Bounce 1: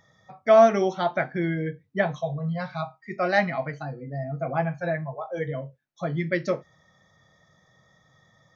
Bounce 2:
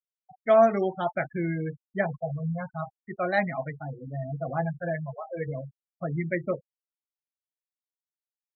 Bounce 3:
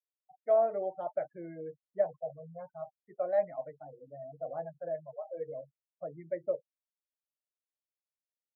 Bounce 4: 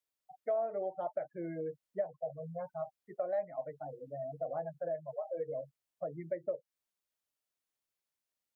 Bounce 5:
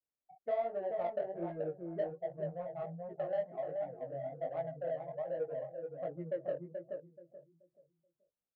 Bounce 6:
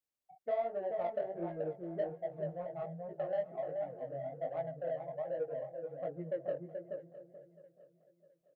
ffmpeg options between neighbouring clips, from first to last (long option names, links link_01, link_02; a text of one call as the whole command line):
ffmpeg -i in.wav -af "afftfilt=real='re*gte(hypot(re,im),0.0447)':imag='im*gte(hypot(re,im),0.0447)':win_size=1024:overlap=0.75,lowshelf=frequency=87:gain=8,volume=-3.5dB" out.wav
ffmpeg -i in.wav -af "bandpass=frequency=570:width_type=q:width=4.7:csg=0,aecho=1:1:6.6:0.35" out.wav
ffmpeg -i in.wav -af "acompressor=threshold=-40dB:ratio=3,volume=5dB" out.wav
ffmpeg -i in.wav -filter_complex "[0:a]asplit=2[link_01][link_02];[link_02]adelay=430,lowpass=frequency=850:poles=1,volume=-3dB,asplit=2[link_03][link_04];[link_04]adelay=430,lowpass=frequency=850:poles=1,volume=0.32,asplit=2[link_05][link_06];[link_06]adelay=430,lowpass=frequency=850:poles=1,volume=0.32,asplit=2[link_07][link_08];[link_08]adelay=430,lowpass=frequency=850:poles=1,volume=0.32[link_09];[link_01][link_03][link_05][link_07][link_09]amix=inputs=5:normalize=0,adynamicsmooth=sensitivity=2.5:basefreq=920,flanger=delay=16.5:depth=7.1:speed=1.3,volume=2.5dB" out.wav
ffmpeg -i in.wav -af "aecho=1:1:660|1320|1980:0.119|0.0475|0.019" out.wav